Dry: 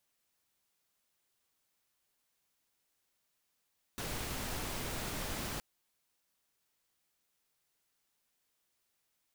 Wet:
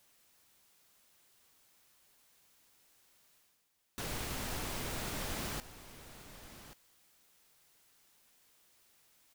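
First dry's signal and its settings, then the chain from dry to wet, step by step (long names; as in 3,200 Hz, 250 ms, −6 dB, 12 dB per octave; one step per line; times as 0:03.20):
noise pink, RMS −39 dBFS 1.62 s
reversed playback
upward compression, threshold −56 dBFS
reversed playback
single-tap delay 1,132 ms −14 dB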